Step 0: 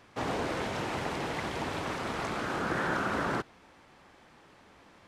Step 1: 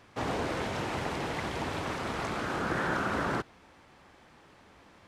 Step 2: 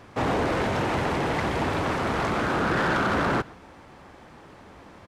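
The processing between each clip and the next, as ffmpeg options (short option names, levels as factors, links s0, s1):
-af "equalizer=f=71:t=o:w=1.5:g=3.5"
-filter_complex "[0:a]asplit=2[s0][s1];[s1]adynamicsmooth=sensitivity=5.5:basefreq=1900,volume=0.841[s2];[s0][s2]amix=inputs=2:normalize=0,asoftclip=type=tanh:threshold=0.0596,aecho=1:1:123:0.0631,volume=1.88"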